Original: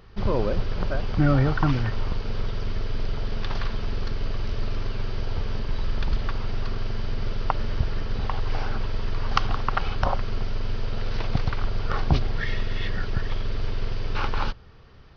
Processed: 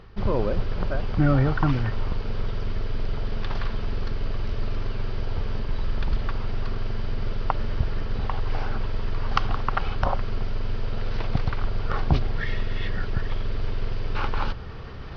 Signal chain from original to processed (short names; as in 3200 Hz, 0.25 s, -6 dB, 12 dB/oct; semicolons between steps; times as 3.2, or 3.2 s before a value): reverse; upward compressor, threshold -23 dBFS; reverse; LPF 3600 Hz 6 dB/oct